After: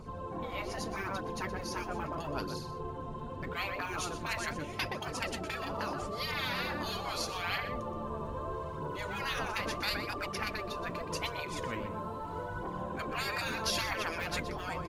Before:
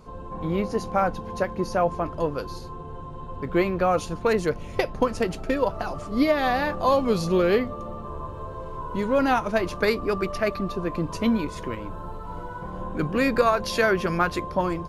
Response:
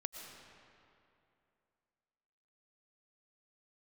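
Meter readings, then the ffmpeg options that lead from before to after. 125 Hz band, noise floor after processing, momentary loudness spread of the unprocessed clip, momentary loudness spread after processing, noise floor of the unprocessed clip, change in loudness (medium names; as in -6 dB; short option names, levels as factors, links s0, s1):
-9.0 dB, -41 dBFS, 14 LU, 6 LU, -37 dBFS, -11.5 dB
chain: -filter_complex "[0:a]asplit=2[s0][s1];[s1]adelay=122.4,volume=0.282,highshelf=f=4000:g=-2.76[s2];[s0][s2]amix=inputs=2:normalize=0,aphaser=in_gain=1:out_gain=1:delay=5:decay=0.48:speed=0.79:type=triangular,afftfilt=real='re*lt(hypot(re,im),0.158)':imag='im*lt(hypot(re,im),0.158)':win_size=1024:overlap=0.75,volume=0.794"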